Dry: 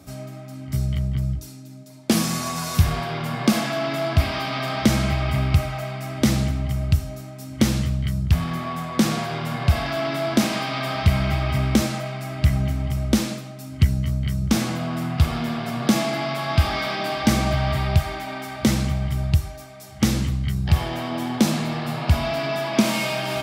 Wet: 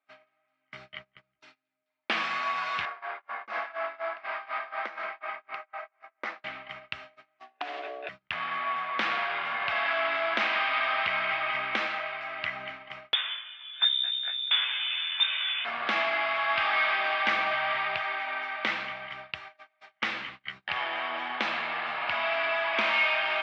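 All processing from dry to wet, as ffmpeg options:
ffmpeg -i in.wav -filter_complex "[0:a]asettb=1/sr,asplit=3[link_01][link_02][link_03];[link_01]atrim=end=2.854[link_04];[link_02]atrim=start=2.85:end=6.44,asetpts=PTS-STARTPTS,afade=type=in:duration=0.004:curve=qsin,afade=type=out:start_time=3.586:duration=0.004:curve=qsin,highpass=410,lowpass=5300,equalizer=frequency=3200:width_type=o:width=1.2:gain=-13.5,tremolo=f=4.1:d=0.78[link_05];[link_03]atrim=start=6.436[link_06];[link_04][link_05]acrossfade=duration=0.004:curve1=hsin:curve2=qsin[link_07];[link_07][link_06]acrossfade=duration=0.004:curve1=qsin:curve2=hsin,asettb=1/sr,asplit=3[link_08][link_09][link_10];[link_08]atrim=end=7.394[link_11];[link_09]atrim=start=7.39:end=8.09,asetpts=PTS-STARTPTS,afade=type=in:duration=0.004:curve=qsin,afade=type=out:start_time=0.696:duration=0.004:curve=qsin,aecho=1:1:4.5:0.58,atrim=end_sample=30870,acompressor=threshold=-22dB:ratio=8:attack=3.2:release=140:knee=1:detection=peak,aeval=exprs='val(0)*sin(2*PI*510*n/s)':channel_layout=same[link_12];[link_10]atrim=start=8.086[link_13];[link_11][link_12]acrossfade=duration=0.004:curve1=hsin:curve2=qsin[link_14];[link_14][link_13]acrossfade=duration=0.004:curve1=qsin:curve2=hsin,asettb=1/sr,asplit=3[link_15][link_16][link_17];[link_15]atrim=end=13.134[link_18];[link_16]atrim=start=13.13:end=15.65,asetpts=PTS-STARTPTS,afade=type=in:duration=0.004:curve=qsin,afade=type=out:start_time=2.516:duration=0.004:curve=qsin,flanger=delay=16:depth=4.2:speed=1.2,lowpass=frequency=3100:width_type=q:width=0.5098,lowpass=frequency=3100:width_type=q:width=0.6013,lowpass=frequency=3100:width_type=q:width=0.9,lowpass=frequency=3100:width_type=q:width=2.563,afreqshift=-3700[link_19];[link_17]atrim=start=15.646[link_20];[link_18][link_19]acrossfade=duration=0.004:curve1=hsin:curve2=qsin[link_21];[link_21][link_20]acrossfade=duration=0.004:curve1=qsin:curve2=hsin,highpass=1300,agate=range=-28dB:threshold=-44dB:ratio=16:detection=peak,lowpass=frequency=2700:width=0.5412,lowpass=frequency=2700:width=1.3066,volume=5.5dB" out.wav

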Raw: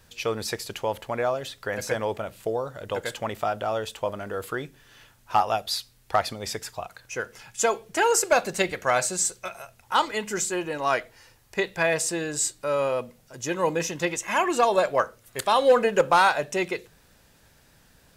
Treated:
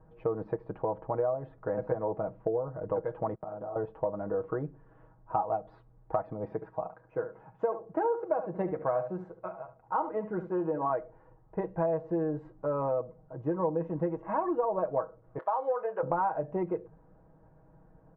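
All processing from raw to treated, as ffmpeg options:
ffmpeg -i in.wav -filter_complex "[0:a]asettb=1/sr,asplit=3[link_01][link_02][link_03];[link_01]atrim=end=3.354[link_04];[link_02]atrim=start=3.35:end=3.76,asetpts=PTS-STARTPTS,afade=type=in:duration=0.004:curve=qsin,afade=type=out:start_time=0.406:duration=0.004:curve=qsin,agate=range=-23dB:threshold=-40dB:ratio=16:release=100:detection=peak,asplit=2[link_05][link_06];[link_06]adelay=48,volume=-3dB[link_07];[link_05][link_07]amix=inputs=2:normalize=0,atrim=end_sample=18081,acompressor=threshold=-36dB:ratio=8:attack=3.2:release=140:knee=1:detection=peak[link_08];[link_03]atrim=start=3.756[link_09];[link_04][link_08]acrossfade=duration=0.004:curve1=hsin:curve2=qsin[link_10];[link_10][link_09]acrossfade=duration=0.004:curve1=qsin:curve2=hsin,asettb=1/sr,asplit=3[link_11][link_12][link_13];[link_11]atrim=end=6.444[link_14];[link_12]atrim=start=6.44:end=10.9,asetpts=PTS-STARTPTS,afade=type=in:duration=0.004:curve=qsin,afade=type=out:start_time=4.456:duration=0.004:curve=qsin,highpass=frequency=130:poles=1,aecho=1:1:71:0.224,atrim=end_sample=196686[link_15];[link_13]atrim=start=10.896[link_16];[link_14][link_15]acrossfade=duration=0.004:curve1=hsin:curve2=qsin[link_17];[link_17][link_16]acrossfade=duration=0.004:curve1=qsin:curve2=hsin,asettb=1/sr,asplit=3[link_18][link_19][link_20];[link_18]atrim=end=15.384[link_21];[link_19]atrim=start=15.38:end=16.03,asetpts=PTS-STARTPTS,afade=type=in:duration=0.004:curve=qsin,afade=type=out:start_time=0.646:duration=0.004:curve=qsin,highpass=800,asplit=2[link_22][link_23];[link_23]adelay=25,volume=-13dB[link_24];[link_22][link_24]amix=inputs=2:normalize=0,atrim=end_sample=28665[link_25];[link_20]atrim=start=16.026[link_26];[link_21][link_25]acrossfade=duration=0.004:curve1=hsin:curve2=qsin[link_27];[link_27][link_26]acrossfade=duration=0.004:curve1=qsin:curve2=hsin,lowpass=frequency=1000:width=0.5412,lowpass=frequency=1000:width=1.3066,aecho=1:1:6.3:0.7,acompressor=threshold=-27dB:ratio=4" out.wav

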